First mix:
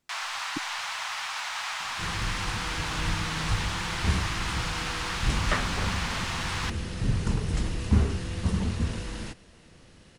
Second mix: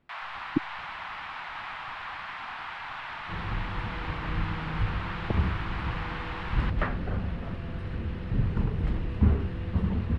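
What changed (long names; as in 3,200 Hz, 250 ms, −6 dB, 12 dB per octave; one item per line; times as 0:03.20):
speech +10.5 dB
second sound: entry +1.30 s
master: add high-frequency loss of the air 480 metres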